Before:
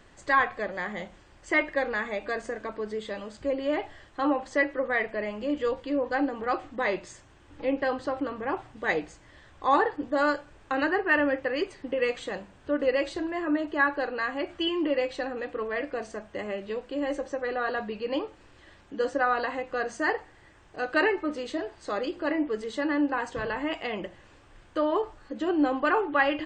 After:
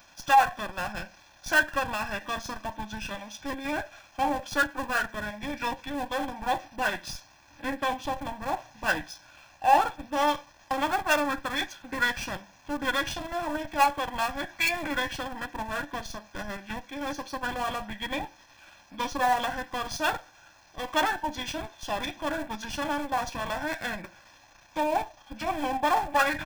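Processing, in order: half-wave gain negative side -7 dB; formant shift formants -5 st; RIAA curve recording; in parallel at -11.5 dB: Schmitt trigger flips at -33.5 dBFS; on the sum: comb 1.2 ms, depth 79%; gain +2.5 dB

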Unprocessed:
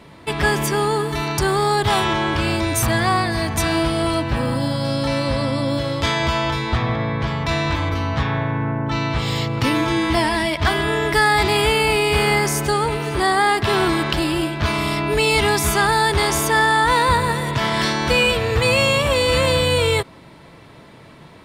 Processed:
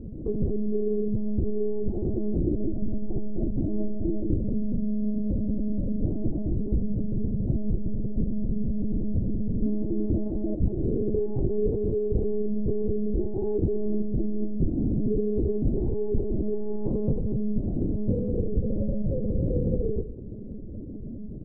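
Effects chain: half-waves squared off; inverse Chebyshev low-pass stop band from 1100 Hz, stop band 50 dB; bell 97 Hz +6 dB 3 oct; notches 50/100/150/200/250 Hz; compressor 2.5:1, threshold -28 dBFS, peak gain reduction 16 dB; feedback echo 0.211 s, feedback 44%, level -16 dB; Schroeder reverb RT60 0.48 s, combs from 27 ms, DRR 11 dB; monotone LPC vocoder at 8 kHz 210 Hz

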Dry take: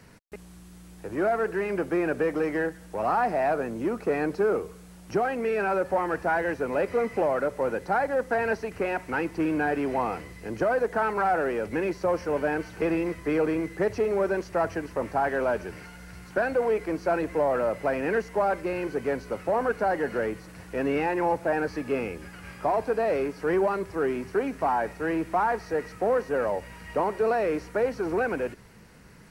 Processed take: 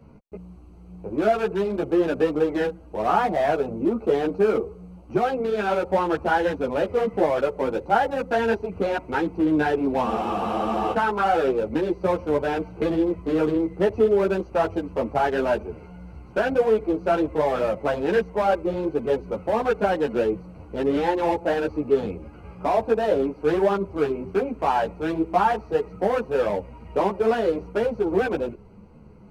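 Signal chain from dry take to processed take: Wiener smoothing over 25 samples; spectral freeze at 10.07, 0.86 s; ensemble effect; gain +8 dB

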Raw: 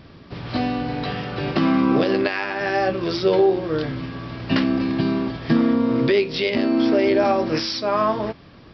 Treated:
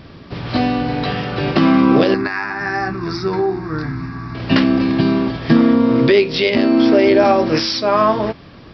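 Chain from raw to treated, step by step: 2.14–4.35 fixed phaser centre 1300 Hz, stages 4; gain +6 dB

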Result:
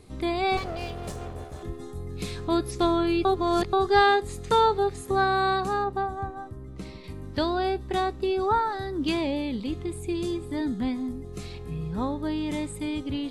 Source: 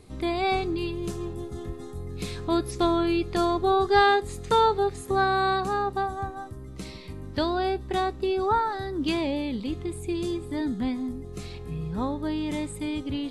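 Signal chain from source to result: 0.57–1.63 minimum comb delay 1.7 ms; 3.25–3.73 reverse; 5.84–7.04 high shelf 2900 Hz -9.5 dB

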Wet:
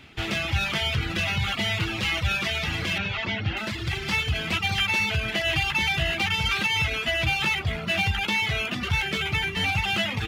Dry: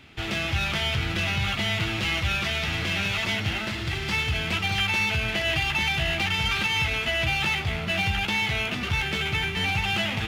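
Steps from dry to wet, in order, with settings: reverb removal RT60 0.9 s; 2.98–3.57 air absorption 190 m; gain +2 dB

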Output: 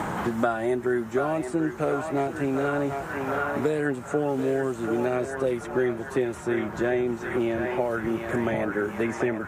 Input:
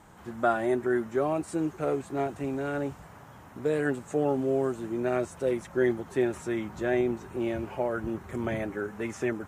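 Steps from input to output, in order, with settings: narrowing echo 0.734 s, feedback 70%, band-pass 1400 Hz, level -5.5 dB; three-band squash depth 100%; gain +1.5 dB

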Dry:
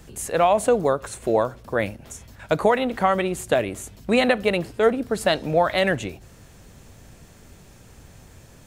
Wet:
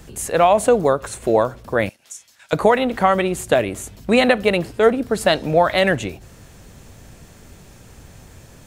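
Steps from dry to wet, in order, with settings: 1.89–2.53 band-pass 6500 Hz, Q 0.65; gain +4 dB

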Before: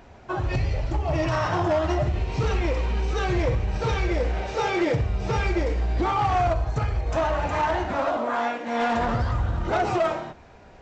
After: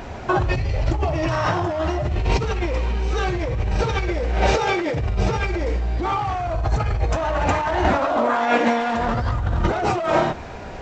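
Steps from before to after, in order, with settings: negative-ratio compressor -30 dBFS, ratio -1; gain +9 dB

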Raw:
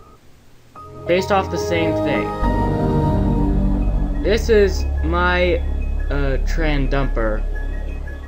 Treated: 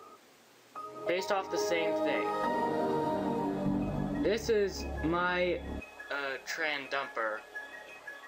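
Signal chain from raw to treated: HPF 370 Hz 12 dB/oct, from 3.66 s 160 Hz, from 5.8 s 850 Hz; compressor 6:1, threshold -23 dBFS, peak gain reduction 12 dB; flange 0.67 Hz, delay 2.2 ms, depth 5.1 ms, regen -66%

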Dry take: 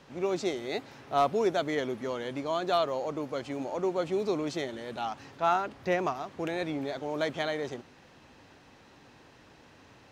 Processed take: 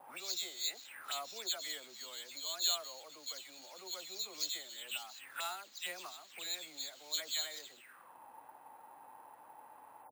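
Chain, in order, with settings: spectral delay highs early, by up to 0.168 s; auto-wah 730–4200 Hz, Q 6.6, up, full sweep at -33.5 dBFS; careless resampling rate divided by 4×, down none, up hold; gain +11.5 dB

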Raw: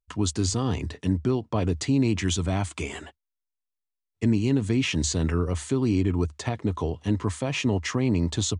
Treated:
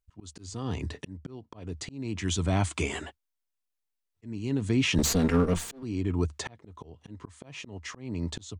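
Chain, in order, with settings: 4.98–5.83 minimum comb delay 4.3 ms; auto swell 0.798 s; gain +2 dB

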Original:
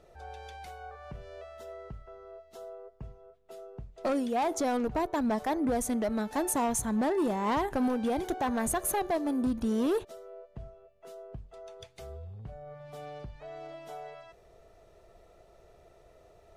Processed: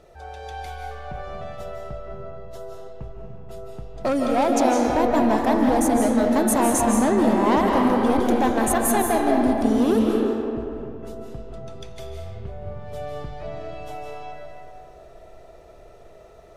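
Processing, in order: digital reverb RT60 2.8 s, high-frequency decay 0.5×, pre-delay 0.12 s, DRR -1 dB; gain +6.5 dB

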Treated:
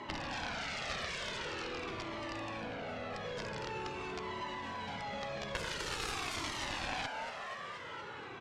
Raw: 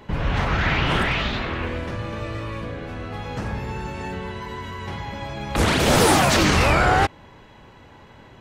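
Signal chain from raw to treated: rattling part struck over -26 dBFS, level -20 dBFS; limiter -13 dBFS, peak gain reduction 7 dB; Bessel high-pass 270 Hz, order 2; on a send: frequency-shifting echo 0.238 s, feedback 53%, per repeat +140 Hz, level -10 dB; on the sum: compressor 2:1, threshold -42 dBFS, peak gain reduction 12.5 dB; dynamic EQ 1500 Hz, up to -3 dB, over -47 dBFS, Q 0.89; added harmonics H 7 -11 dB, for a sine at -19.5 dBFS; air absorption 69 m; cascading flanger falling 0.46 Hz; gain +8 dB

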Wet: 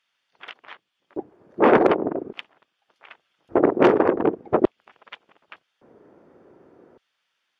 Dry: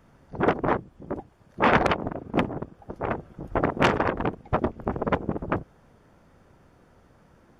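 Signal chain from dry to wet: LFO high-pass square 0.43 Hz 370–3200 Hz; RIAA curve playback

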